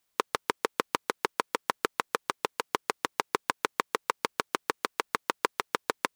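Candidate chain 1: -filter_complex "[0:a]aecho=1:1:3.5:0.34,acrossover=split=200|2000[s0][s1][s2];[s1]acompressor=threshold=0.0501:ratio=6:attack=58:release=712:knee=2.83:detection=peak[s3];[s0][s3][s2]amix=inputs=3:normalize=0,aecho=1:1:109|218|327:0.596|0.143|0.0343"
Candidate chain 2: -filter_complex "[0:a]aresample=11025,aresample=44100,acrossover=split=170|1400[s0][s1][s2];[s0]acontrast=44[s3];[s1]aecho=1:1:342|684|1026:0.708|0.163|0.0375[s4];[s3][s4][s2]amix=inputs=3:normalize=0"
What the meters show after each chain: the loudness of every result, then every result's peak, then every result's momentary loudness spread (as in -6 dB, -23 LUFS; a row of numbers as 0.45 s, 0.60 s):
-30.5 LUFS, -31.5 LUFS; -6.5 dBFS, -7.5 dBFS; 2 LU, 2 LU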